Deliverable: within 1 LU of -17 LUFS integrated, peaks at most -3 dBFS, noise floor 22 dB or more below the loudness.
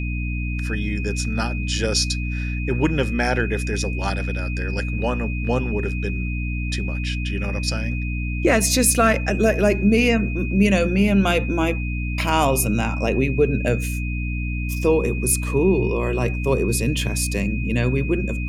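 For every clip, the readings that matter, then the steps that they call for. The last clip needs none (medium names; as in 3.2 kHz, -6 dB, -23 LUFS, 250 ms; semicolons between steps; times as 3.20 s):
hum 60 Hz; highest harmonic 300 Hz; hum level -23 dBFS; steady tone 2.5 kHz; tone level -32 dBFS; loudness -21.5 LUFS; peak level -5.5 dBFS; loudness target -17.0 LUFS
-> hum notches 60/120/180/240/300 Hz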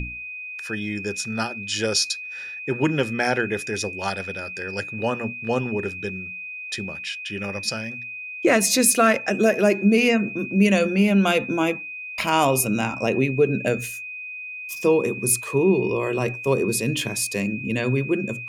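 hum not found; steady tone 2.5 kHz; tone level -32 dBFS
-> band-stop 2.5 kHz, Q 30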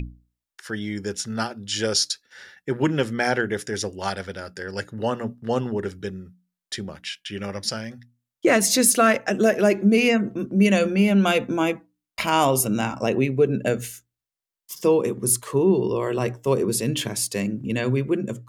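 steady tone not found; loudness -22.5 LUFS; peak level -6.5 dBFS; loudness target -17.0 LUFS
-> trim +5.5 dB; peak limiter -3 dBFS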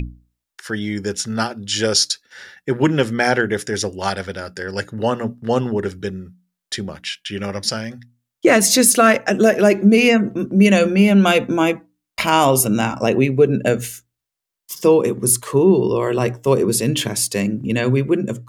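loudness -17.5 LUFS; peak level -3.0 dBFS; noise floor -83 dBFS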